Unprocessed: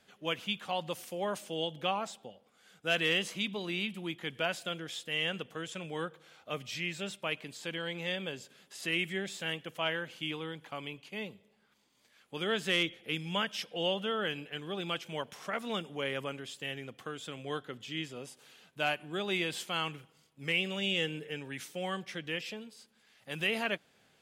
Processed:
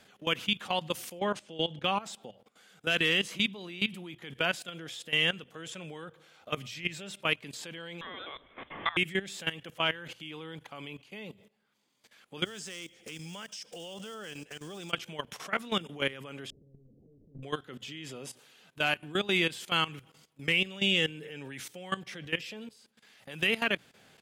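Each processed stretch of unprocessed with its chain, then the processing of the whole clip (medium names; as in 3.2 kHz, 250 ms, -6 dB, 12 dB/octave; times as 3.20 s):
1.19–1.84 s: high-pass 51 Hz + distance through air 74 m
8.01–8.97 s: high-pass 810 Hz 6 dB/octave + frequency inversion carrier 3.8 kHz + three bands compressed up and down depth 100%
12.45–14.93 s: block-companded coder 5-bit + high-order bell 6.6 kHz +12.5 dB 1.1 oct + compression 4:1, threshold -46 dBFS
16.50–17.43 s: one-bit comparator + Gaussian low-pass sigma 24 samples + compression 12:1, threshold -49 dBFS
whole clip: level held to a coarse grid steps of 17 dB; dynamic bell 650 Hz, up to -5 dB, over -53 dBFS, Q 1.4; hum notches 60/120 Hz; trim +8.5 dB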